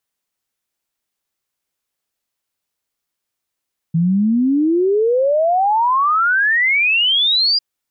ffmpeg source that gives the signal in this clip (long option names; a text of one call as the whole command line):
ffmpeg -f lavfi -i "aevalsrc='0.251*clip(min(t,3.65-t)/0.01,0,1)*sin(2*PI*160*3.65/log(4900/160)*(exp(log(4900/160)*t/3.65)-1))':duration=3.65:sample_rate=44100" out.wav